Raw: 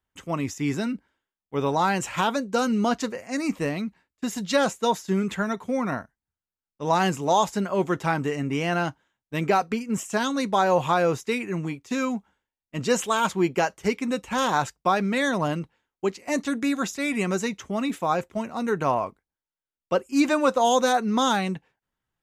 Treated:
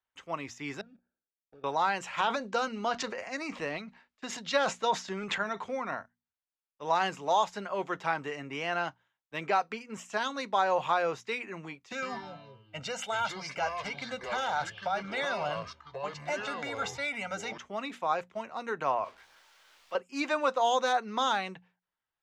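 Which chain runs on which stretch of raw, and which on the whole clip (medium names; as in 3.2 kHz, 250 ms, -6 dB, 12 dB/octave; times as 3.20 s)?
0.81–1.64 s: block-companded coder 3-bit + compression 8:1, threshold -37 dBFS + boxcar filter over 43 samples
2.20–5.77 s: low-pass 8.7 kHz + transient shaper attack +2 dB, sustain +10 dB
11.92–17.58 s: compression, threshold -24 dBFS + comb 1.4 ms, depth 99% + ever faster or slower copies 102 ms, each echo -5 st, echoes 3, each echo -6 dB
19.04–19.95 s: jump at every zero crossing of -37.5 dBFS + bass shelf 400 Hz -10 dB + detune thickener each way 41 cents
whole clip: three-band isolator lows -13 dB, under 500 Hz, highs -18 dB, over 5.7 kHz; hum notches 60/120/180/240 Hz; trim -4 dB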